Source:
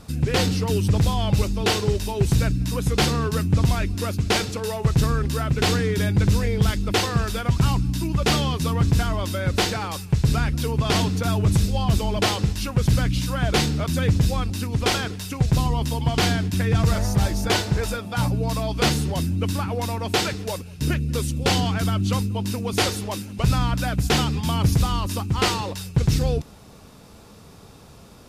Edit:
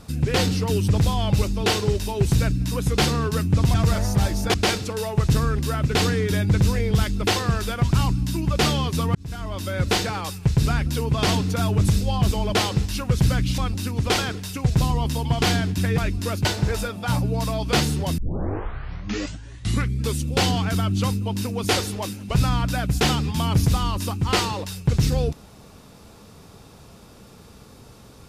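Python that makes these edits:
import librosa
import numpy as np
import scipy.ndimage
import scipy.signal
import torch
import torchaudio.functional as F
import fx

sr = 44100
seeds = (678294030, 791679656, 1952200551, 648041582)

y = fx.edit(x, sr, fx.swap(start_s=3.74, length_s=0.47, other_s=16.74, other_length_s=0.8),
    fx.fade_in_span(start_s=8.82, length_s=0.65),
    fx.cut(start_s=13.25, length_s=1.09),
    fx.tape_start(start_s=19.27, length_s=1.99), tone=tone)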